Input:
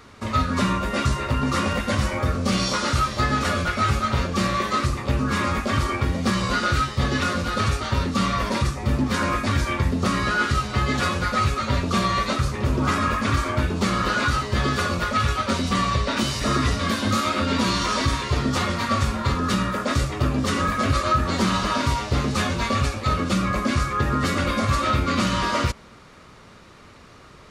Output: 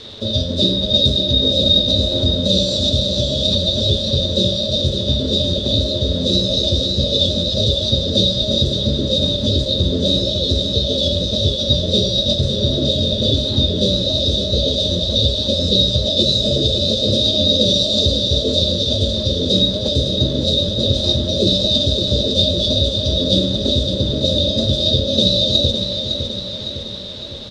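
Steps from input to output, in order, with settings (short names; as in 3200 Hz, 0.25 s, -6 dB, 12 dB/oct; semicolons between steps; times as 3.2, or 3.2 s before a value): FFT band-reject 650–2500 Hz; in parallel at 0 dB: compressor 16:1, threshold -35 dBFS, peak gain reduction 19.5 dB; on the sum: flange 0.24 Hz, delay 8.9 ms, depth 2.4 ms, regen -40%; bit-crush 8-bit; formant shift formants +5 st; synth low-pass 3700 Hz, resonance Q 8.7; on a send: feedback echo 0.558 s, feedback 56%, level -7 dB; on the sum: gain +6 dB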